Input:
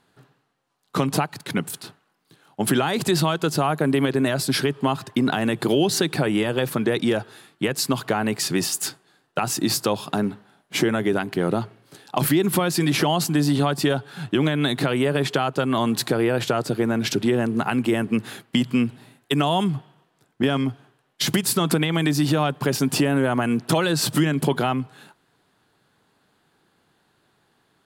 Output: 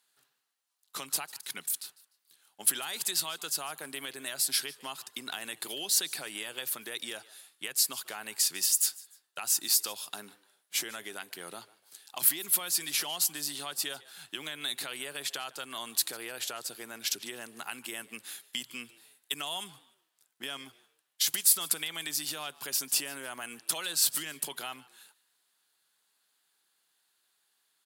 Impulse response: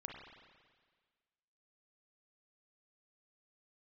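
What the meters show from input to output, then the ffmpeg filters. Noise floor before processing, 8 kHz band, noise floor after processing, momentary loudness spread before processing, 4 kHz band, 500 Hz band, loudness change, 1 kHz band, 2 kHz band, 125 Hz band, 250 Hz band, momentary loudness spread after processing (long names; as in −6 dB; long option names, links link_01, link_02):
−67 dBFS, +1.0 dB, −76 dBFS, 7 LU, −5.0 dB, −23.5 dB, −8.0 dB, −17.0 dB, −11.0 dB, −33.5 dB, −28.5 dB, 16 LU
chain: -filter_complex "[0:a]aderivative,asplit=3[link_01][link_02][link_03];[link_02]adelay=149,afreqshift=94,volume=-21dB[link_04];[link_03]adelay=298,afreqshift=188,volume=-30.6dB[link_05];[link_01][link_04][link_05]amix=inputs=3:normalize=0"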